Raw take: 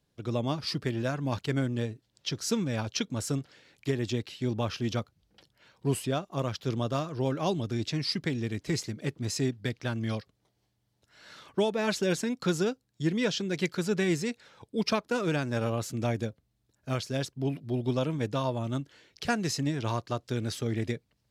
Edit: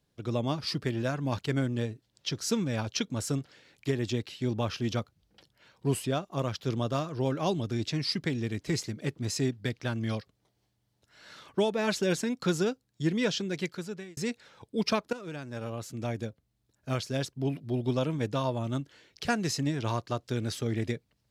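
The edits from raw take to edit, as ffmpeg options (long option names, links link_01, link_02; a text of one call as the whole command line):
ffmpeg -i in.wav -filter_complex "[0:a]asplit=3[link_01][link_02][link_03];[link_01]atrim=end=14.17,asetpts=PTS-STARTPTS,afade=type=out:start_time=13.36:duration=0.81[link_04];[link_02]atrim=start=14.17:end=15.13,asetpts=PTS-STARTPTS,afade=type=in:duration=0.004:curve=hsin,afade=type=out:start_time=0.956:duration=0.004:curve=hsin:silence=0.199526[link_05];[link_03]atrim=start=15.13,asetpts=PTS-STARTPTS,afade=type=in:duration=1.78:silence=0.199526[link_06];[link_04][link_05][link_06]concat=n=3:v=0:a=1" out.wav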